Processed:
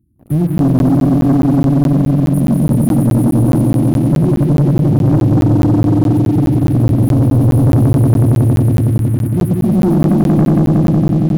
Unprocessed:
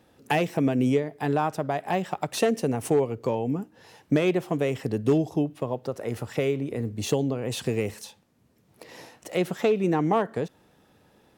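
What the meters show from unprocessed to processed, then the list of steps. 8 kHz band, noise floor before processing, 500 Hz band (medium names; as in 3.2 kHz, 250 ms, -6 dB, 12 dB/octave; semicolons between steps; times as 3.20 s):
no reading, -62 dBFS, +5.0 dB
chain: brick-wall FIR band-stop 370–9100 Hz; bass shelf 250 Hz +7 dB; on a send: echo with a slow build-up 92 ms, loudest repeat 5, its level -3 dB; on the sum: gain riding within 4 dB 2 s; peaking EQ 69 Hz +11.5 dB 2.3 oct; waveshaping leveller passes 3; crackling interface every 0.21 s, samples 512, zero, from 0.58 s; trim -4 dB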